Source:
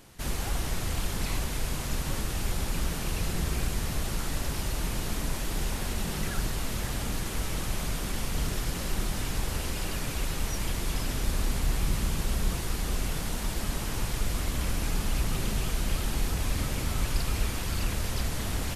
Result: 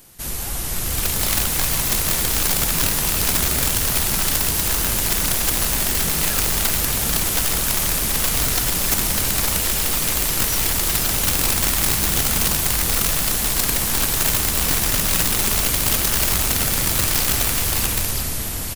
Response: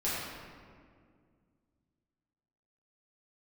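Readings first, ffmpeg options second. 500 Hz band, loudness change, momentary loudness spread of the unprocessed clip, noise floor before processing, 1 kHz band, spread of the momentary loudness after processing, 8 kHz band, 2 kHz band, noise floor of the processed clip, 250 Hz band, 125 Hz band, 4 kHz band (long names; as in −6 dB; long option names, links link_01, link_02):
+8.0 dB, +14.0 dB, 2 LU, −34 dBFS, +10.0 dB, 2 LU, +17.5 dB, +12.0 dB, −25 dBFS, +6.0 dB, +4.5 dB, +14.0 dB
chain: -filter_complex "[0:a]dynaudnorm=framelen=170:gausssize=11:maxgain=7dB,aemphasis=mode=production:type=50fm,aecho=1:1:937:0.2,asplit=2[link_01][link_02];[1:a]atrim=start_sample=2205[link_03];[link_02][link_03]afir=irnorm=-1:irlink=0,volume=-20dB[link_04];[link_01][link_04]amix=inputs=2:normalize=0,aeval=exprs='(mod(4.47*val(0)+1,2)-1)/4.47':channel_layout=same"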